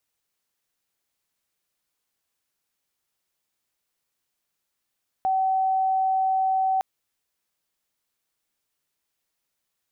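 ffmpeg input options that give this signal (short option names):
-f lavfi -i "sine=f=762:d=1.56:r=44100,volume=-1.44dB"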